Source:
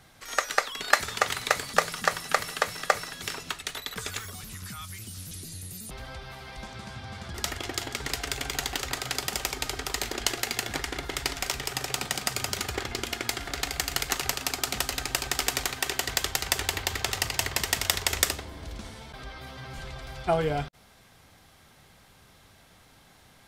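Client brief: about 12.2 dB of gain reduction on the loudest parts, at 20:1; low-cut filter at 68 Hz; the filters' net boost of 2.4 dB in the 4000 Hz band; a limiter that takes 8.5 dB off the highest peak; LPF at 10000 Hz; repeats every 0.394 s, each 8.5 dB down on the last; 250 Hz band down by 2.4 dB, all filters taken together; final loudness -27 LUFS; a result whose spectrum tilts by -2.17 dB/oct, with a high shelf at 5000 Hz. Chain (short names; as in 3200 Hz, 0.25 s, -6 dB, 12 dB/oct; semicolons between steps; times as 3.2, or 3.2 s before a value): HPF 68 Hz; LPF 10000 Hz; bell 250 Hz -3.5 dB; bell 4000 Hz +6.5 dB; high shelf 5000 Hz -7 dB; compressor 20:1, threshold -28 dBFS; limiter -17.5 dBFS; feedback echo 0.394 s, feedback 38%, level -8.5 dB; gain +8.5 dB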